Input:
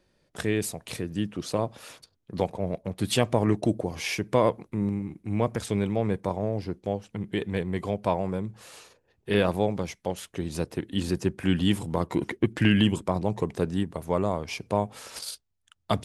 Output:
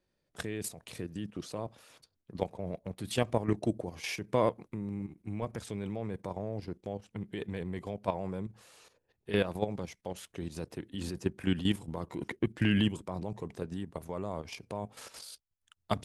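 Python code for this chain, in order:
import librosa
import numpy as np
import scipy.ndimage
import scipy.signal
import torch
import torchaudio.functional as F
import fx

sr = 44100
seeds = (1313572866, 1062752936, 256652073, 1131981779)

y = fx.level_steps(x, sr, step_db=11)
y = y * 10.0 ** (-3.5 / 20.0)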